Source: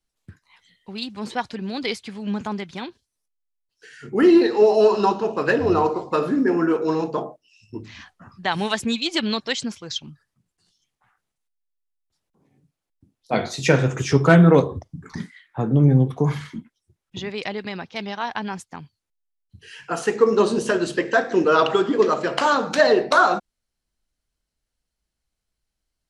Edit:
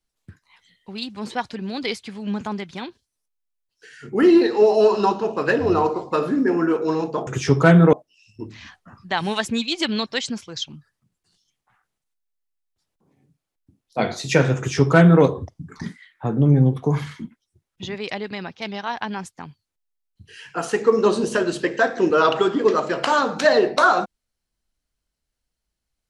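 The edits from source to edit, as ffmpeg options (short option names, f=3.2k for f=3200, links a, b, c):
-filter_complex "[0:a]asplit=3[a][b][c];[a]atrim=end=7.272[d];[b]atrim=start=13.908:end=14.572[e];[c]atrim=start=7.268[f];[d][e]acrossfade=d=0.004:c1=hsin:c2=hsin[g];[g][f]acrossfade=d=0.004:c1=hsin:c2=hsin"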